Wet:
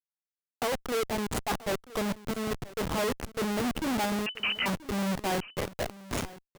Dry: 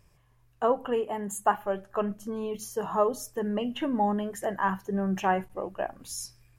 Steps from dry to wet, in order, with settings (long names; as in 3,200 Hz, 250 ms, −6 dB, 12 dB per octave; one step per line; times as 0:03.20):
comparator with hysteresis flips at −30.5 dBFS
brickwall limiter −35 dBFS, peak gain reduction 11 dB
0:04.26–0:04.66: voice inversion scrambler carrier 3,000 Hz
low-shelf EQ 65 Hz −9.5 dB
on a send: single-tap delay 981 ms −18.5 dB
on the sum: level +8.5 dB